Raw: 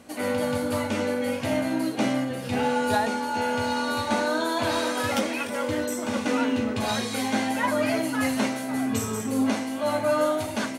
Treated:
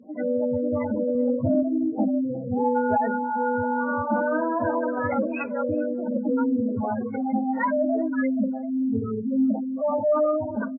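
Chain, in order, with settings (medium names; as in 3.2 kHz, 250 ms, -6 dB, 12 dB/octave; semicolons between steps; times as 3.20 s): median filter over 9 samples; high-pass 82 Hz 12 dB/octave; spectral gate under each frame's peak -10 dB strong; 1.15–1.63 s: bass shelf 200 Hz +9.5 dB; 4.78–5.88 s: low-pass 4.9 kHz 24 dB/octave; saturation -6.5 dBFS, distortion -43 dB; echo from a far wall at 66 m, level -30 dB; trim +3 dB; AAC 24 kbps 16 kHz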